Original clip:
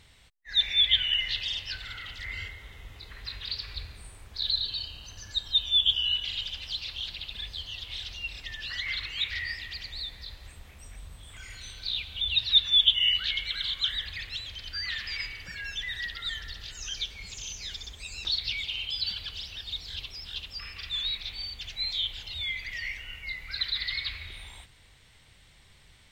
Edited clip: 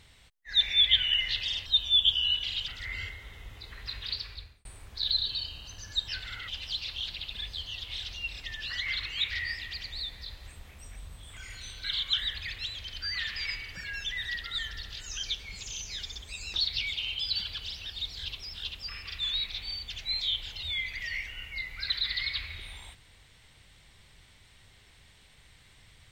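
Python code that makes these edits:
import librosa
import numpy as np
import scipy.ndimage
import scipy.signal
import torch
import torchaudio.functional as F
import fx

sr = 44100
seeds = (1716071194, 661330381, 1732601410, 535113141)

y = fx.edit(x, sr, fx.swap(start_s=1.66, length_s=0.41, other_s=5.47, other_length_s=1.02),
    fx.fade_out_span(start_s=3.52, length_s=0.52),
    fx.cut(start_s=11.84, length_s=1.71), tone=tone)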